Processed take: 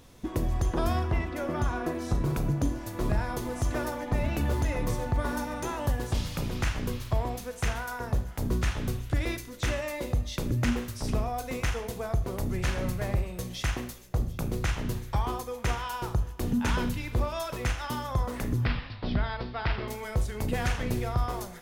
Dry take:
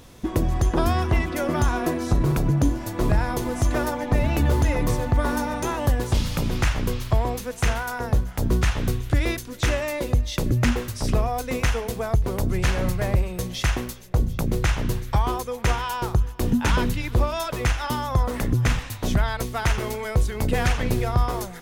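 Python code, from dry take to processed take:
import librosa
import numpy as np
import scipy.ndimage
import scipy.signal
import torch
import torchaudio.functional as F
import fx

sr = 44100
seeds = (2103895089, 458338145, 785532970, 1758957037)

y = fx.high_shelf(x, sr, hz=3800.0, db=-7.5, at=(0.99, 1.95))
y = fx.steep_lowpass(y, sr, hz=5100.0, slope=96, at=(18.61, 19.88))
y = fx.rev_schroeder(y, sr, rt60_s=0.46, comb_ms=26, drr_db=9.5)
y = F.gain(torch.from_numpy(y), -7.0).numpy()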